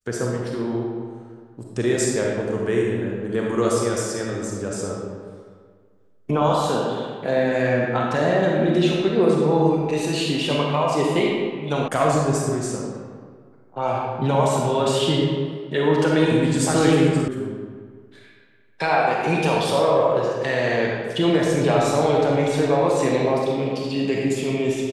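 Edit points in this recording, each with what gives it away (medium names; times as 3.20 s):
11.88 s: sound stops dead
17.28 s: sound stops dead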